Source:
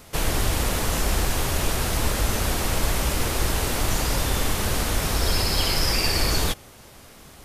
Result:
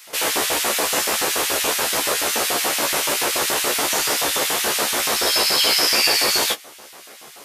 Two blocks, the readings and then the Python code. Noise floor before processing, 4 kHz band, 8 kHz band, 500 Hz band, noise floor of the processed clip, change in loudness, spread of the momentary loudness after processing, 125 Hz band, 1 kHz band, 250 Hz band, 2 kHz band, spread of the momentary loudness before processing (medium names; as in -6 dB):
-47 dBFS, +8.0 dB, +8.0 dB, +4.5 dB, -43 dBFS, +6.0 dB, 4 LU, -18.0 dB, +5.5 dB, -2.0 dB, +7.0 dB, 3 LU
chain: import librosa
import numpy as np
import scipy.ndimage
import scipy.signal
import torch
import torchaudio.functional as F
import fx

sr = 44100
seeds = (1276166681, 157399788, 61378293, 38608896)

y = fx.filter_lfo_highpass(x, sr, shape='square', hz=7.0, low_hz=420.0, high_hz=2200.0, q=0.92)
y = fx.room_early_taps(y, sr, ms=(14, 27), db=(-4.0, -11.0))
y = y * 10.0 ** (6.0 / 20.0)